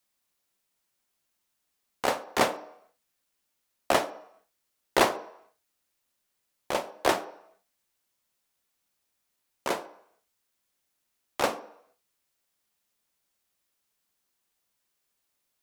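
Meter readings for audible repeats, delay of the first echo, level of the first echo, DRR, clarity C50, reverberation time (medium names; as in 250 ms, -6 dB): no echo, no echo, no echo, 11.0 dB, 16.0 dB, 0.70 s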